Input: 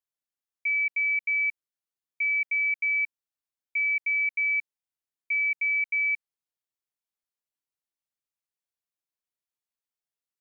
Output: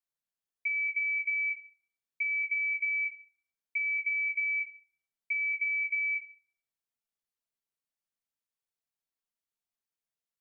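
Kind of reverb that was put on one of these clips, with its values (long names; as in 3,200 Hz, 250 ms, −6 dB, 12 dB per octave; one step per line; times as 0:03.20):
rectangular room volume 880 cubic metres, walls furnished, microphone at 1.6 metres
level −4 dB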